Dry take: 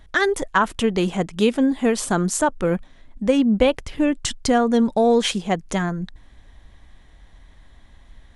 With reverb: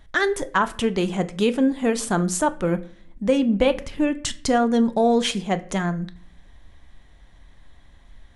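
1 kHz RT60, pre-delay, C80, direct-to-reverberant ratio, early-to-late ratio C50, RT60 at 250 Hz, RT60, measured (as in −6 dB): 0.50 s, 6 ms, 21.5 dB, 10.5 dB, 17.5 dB, 0.85 s, 0.50 s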